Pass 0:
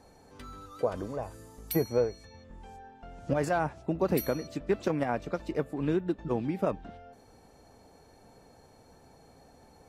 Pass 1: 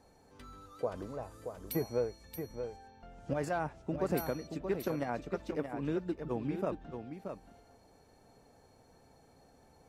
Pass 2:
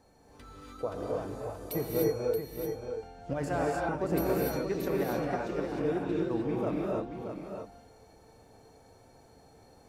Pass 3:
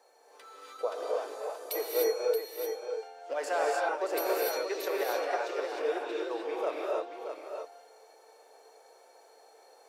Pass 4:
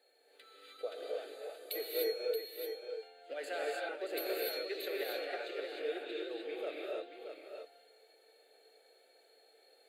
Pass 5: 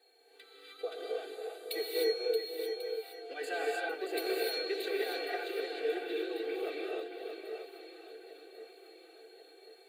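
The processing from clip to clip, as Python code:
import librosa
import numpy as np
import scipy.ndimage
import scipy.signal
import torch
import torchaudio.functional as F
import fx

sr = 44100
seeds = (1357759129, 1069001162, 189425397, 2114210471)

y1 = x + 10.0 ** (-7.5 / 20.0) * np.pad(x, (int(627 * sr / 1000.0), 0))[:len(x)]
y1 = y1 * librosa.db_to_amplitude(-6.0)
y2 = fx.rev_gated(y1, sr, seeds[0], gate_ms=330, shape='rising', drr_db=-3.0)
y3 = fx.dynamic_eq(y2, sr, hz=4100.0, q=0.79, threshold_db=-56.0, ratio=4.0, max_db=5)
y3 = scipy.signal.sosfilt(scipy.signal.butter(6, 420.0, 'highpass', fs=sr, output='sos'), y3)
y3 = y3 * librosa.db_to_amplitude(2.5)
y4 = fx.peak_eq(y3, sr, hz=4200.0, db=11.5, octaves=0.59)
y4 = fx.fixed_phaser(y4, sr, hz=2400.0, stages=4)
y4 = y4 * librosa.db_to_amplitude(-4.0)
y5 = y4 + 0.99 * np.pad(y4, (int(2.6 * sr / 1000.0), 0))[:len(y4)]
y5 = fx.echo_alternate(y5, sr, ms=546, hz=850.0, feedback_pct=70, wet_db=-10.5)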